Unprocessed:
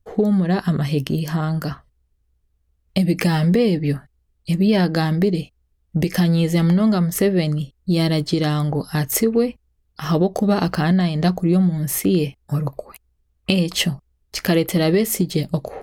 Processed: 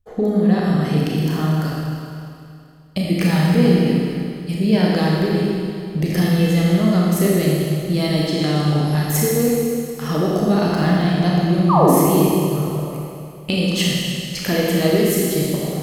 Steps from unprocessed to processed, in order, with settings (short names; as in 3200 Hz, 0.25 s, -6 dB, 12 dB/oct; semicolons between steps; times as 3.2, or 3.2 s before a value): painted sound fall, 11.69–11.92, 230–1300 Hz -13 dBFS; Schroeder reverb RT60 2.5 s, combs from 26 ms, DRR -4.5 dB; gain -4 dB